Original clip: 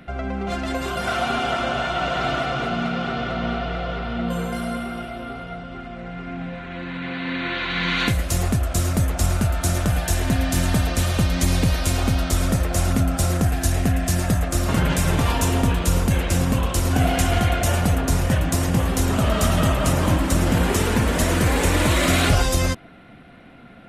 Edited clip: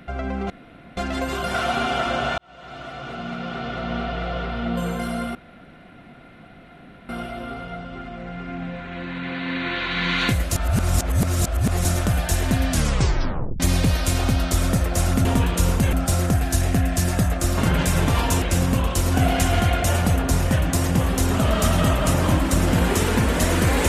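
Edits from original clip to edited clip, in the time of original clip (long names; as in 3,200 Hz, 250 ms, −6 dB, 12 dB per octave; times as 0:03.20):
0:00.50: splice in room tone 0.47 s
0:01.91–0:03.86: fade in
0:04.88: splice in room tone 1.74 s
0:08.35–0:09.64: reverse
0:10.49: tape stop 0.90 s
0:15.53–0:16.21: move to 0:13.04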